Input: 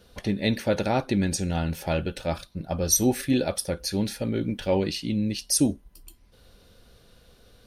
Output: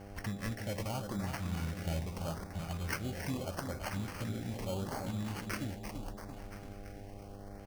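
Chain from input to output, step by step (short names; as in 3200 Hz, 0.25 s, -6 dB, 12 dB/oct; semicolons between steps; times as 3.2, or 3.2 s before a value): median filter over 5 samples; high shelf 8500 Hz +11 dB; harmonic-percussive split percussive -6 dB; bell 340 Hz -12 dB 2.3 oct; compressor 3:1, threshold -44 dBFS, peak gain reduction 16.5 dB; on a send: feedback echo 0.338 s, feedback 58%, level -7 dB; on the sum: sample-and-hold 12×; LFO notch saw up 0.79 Hz 360–3200 Hz; buzz 100 Hz, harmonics 8, -56 dBFS -3 dB/oct; gain +6 dB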